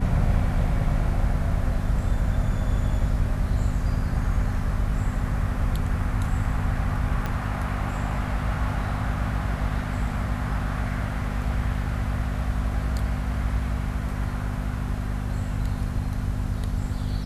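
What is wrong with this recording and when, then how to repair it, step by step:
hum 50 Hz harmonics 5 -29 dBFS
7.26 s: pop -15 dBFS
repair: de-click; de-hum 50 Hz, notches 5

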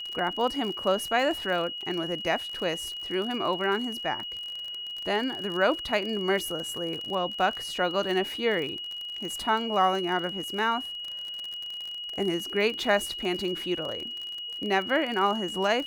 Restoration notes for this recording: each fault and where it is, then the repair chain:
crackle 40 per s -32 dBFS
whine 2.9 kHz -34 dBFS
1.81 s: dropout 4.7 ms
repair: de-click; band-stop 2.9 kHz, Q 30; interpolate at 1.81 s, 4.7 ms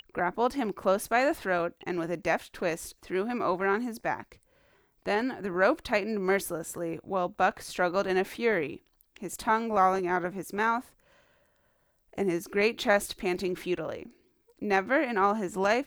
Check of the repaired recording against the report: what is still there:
nothing left

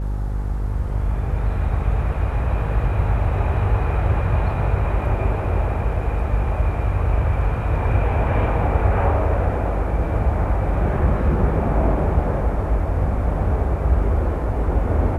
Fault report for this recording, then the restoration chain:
buzz 50 Hz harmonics 11 -24 dBFS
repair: de-hum 50 Hz, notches 11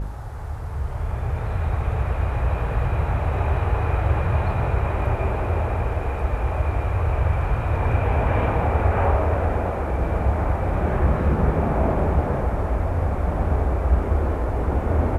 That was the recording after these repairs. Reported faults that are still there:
nothing left

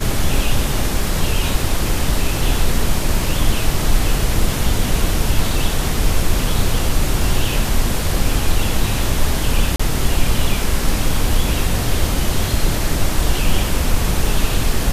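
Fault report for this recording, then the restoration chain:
9.76–9.79 s: dropout 35 ms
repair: interpolate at 9.76 s, 35 ms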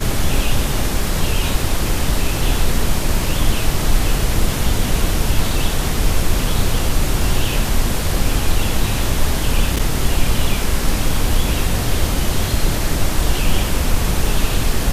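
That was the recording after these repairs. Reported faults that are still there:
nothing left

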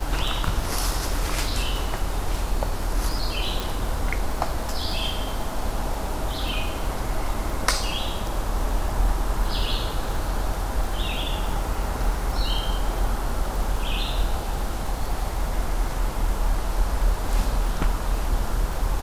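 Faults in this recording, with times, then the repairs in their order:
crackle 53 per s -30 dBFS
3.60 s: pop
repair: de-click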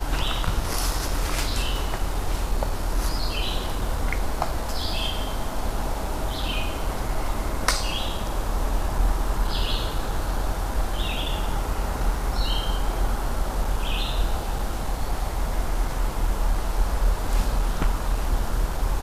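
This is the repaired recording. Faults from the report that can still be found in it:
nothing left

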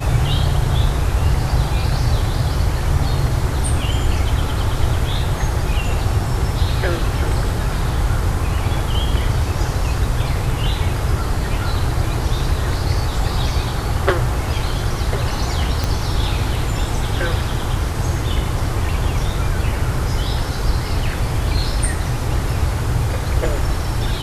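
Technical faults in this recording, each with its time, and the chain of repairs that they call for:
15.84 s: pop -6 dBFS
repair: de-click

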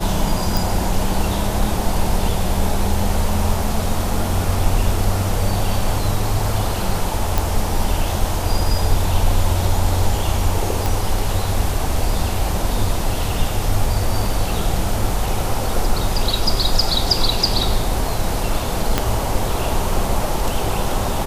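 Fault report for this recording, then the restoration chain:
0.57 s: pop
7.38 s: pop
10.86 s: pop
18.98 s: pop -1 dBFS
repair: de-click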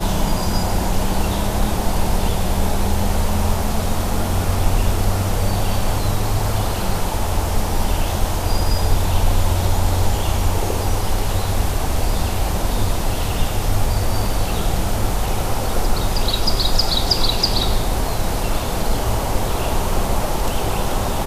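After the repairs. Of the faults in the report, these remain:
18.98 s: pop

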